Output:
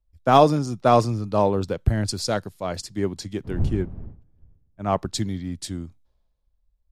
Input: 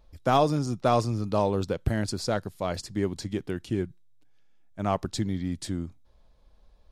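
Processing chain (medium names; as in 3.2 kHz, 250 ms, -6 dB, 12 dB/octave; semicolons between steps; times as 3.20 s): 3.43–4.91 s: wind noise 150 Hz -39 dBFS; three bands expanded up and down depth 70%; trim +2.5 dB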